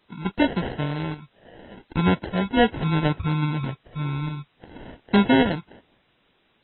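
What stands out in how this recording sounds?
aliases and images of a low sample rate 1,200 Hz, jitter 0%
sample-and-hold tremolo, depth 75%
a quantiser's noise floor 10 bits, dither triangular
AAC

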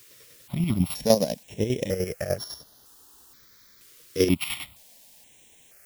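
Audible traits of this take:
a buzz of ramps at a fixed pitch in blocks of 8 samples
chopped level 10 Hz, depth 60%, duty 40%
a quantiser's noise floor 10 bits, dither triangular
notches that jump at a steady rate 2.1 Hz 210–7,900 Hz

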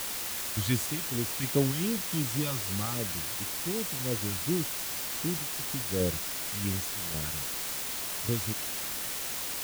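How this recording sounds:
phaser sweep stages 2, 2.7 Hz, lowest notch 400–2,100 Hz
sample-and-hold tremolo, depth 80%
a quantiser's noise floor 6 bits, dither triangular

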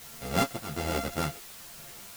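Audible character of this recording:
a buzz of ramps at a fixed pitch in blocks of 64 samples
tremolo triangle 1.2 Hz, depth 85%
a quantiser's noise floor 8 bits, dither triangular
a shimmering, thickened sound

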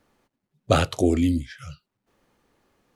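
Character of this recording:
background noise floor −82 dBFS
spectral slope −6.0 dB per octave

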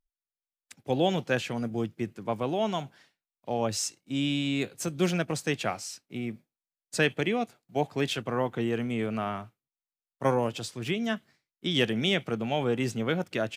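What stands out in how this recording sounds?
background noise floor −96 dBFS
spectral slope −4.5 dB per octave

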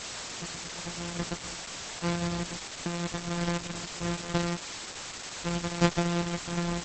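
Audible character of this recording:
a buzz of ramps at a fixed pitch in blocks of 256 samples
sample-and-hold tremolo, depth 100%
a quantiser's noise floor 6 bits, dither triangular
Opus

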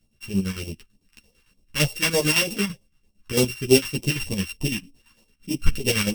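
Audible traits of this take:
a buzz of ramps at a fixed pitch in blocks of 16 samples
phaser sweep stages 2, 3.3 Hz, lowest notch 510–1,500 Hz
chopped level 8.9 Hz, depth 60%, duty 55%
a shimmering, thickened sound

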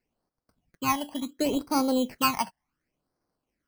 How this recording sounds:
aliases and images of a low sample rate 3,600 Hz, jitter 0%
phaser sweep stages 12, 0.7 Hz, lowest notch 400–2,800 Hz
AAC

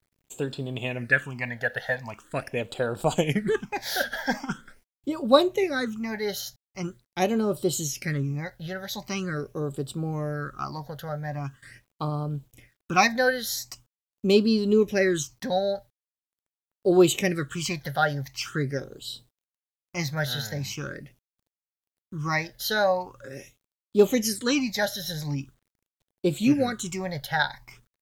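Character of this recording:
phaser sweep stages 8, 0.43 Hz, lowest notch 320–2,000 Hz
a quantiser's noise floor 12 bits, dither none

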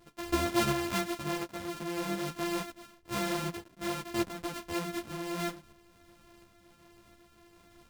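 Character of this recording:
a buzz of ramps at a fixed pitch in blocks of 128 samples
tremolo saw up 1.4 Hz, depth 40%
a shimmering, thickened sound

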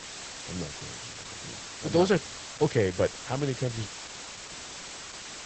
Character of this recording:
a quantiser's noise floor 6 bits, dither triangular
Opus

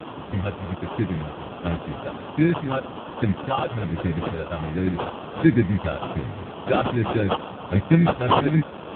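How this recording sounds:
a quantiser's noise floor 6 bits, dither triangular
phaser sweep stages 4, 1.3 Hz, lowest notch 220–1,300 Hz
aliases and images of a low sample rate 2,000 Hz, jitter 0%
AMR narrowband

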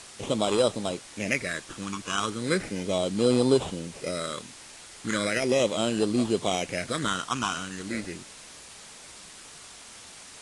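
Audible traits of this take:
aliases and images of a low sample rate 4,500 Hz, jitter 0%
phaser sweep stages 8, 0.37 Hz, lowest notch 590–2,000 Hz
a quantiser's noise floor 8 bits, dither triangular
AAC

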